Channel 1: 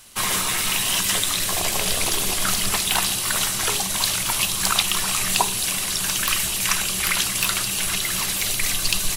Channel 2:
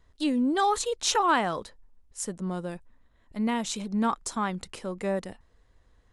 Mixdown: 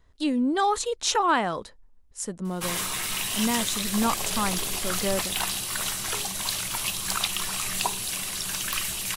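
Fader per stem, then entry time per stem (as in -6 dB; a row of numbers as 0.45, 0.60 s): -7.0, +1.0 dB; 2.45, 0.00 s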